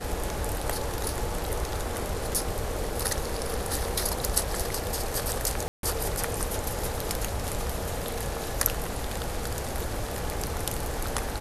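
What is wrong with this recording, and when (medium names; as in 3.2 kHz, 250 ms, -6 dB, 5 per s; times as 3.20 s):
5.68–5.83 s: dropout 152 ms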